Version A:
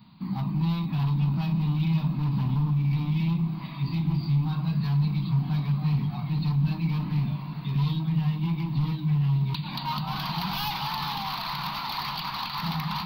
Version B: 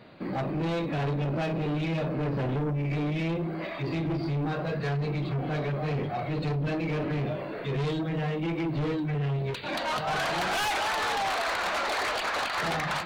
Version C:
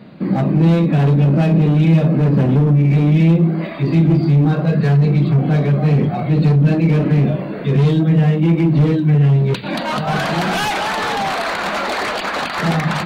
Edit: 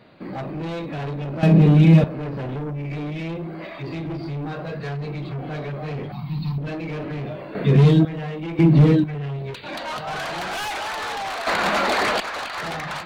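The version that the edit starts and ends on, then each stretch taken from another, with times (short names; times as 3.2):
B
1.43–2.04 from C
6.12–6.58 from A
7.55–8.05 from C
8.59–9.04 from C
11.47–12.2 from C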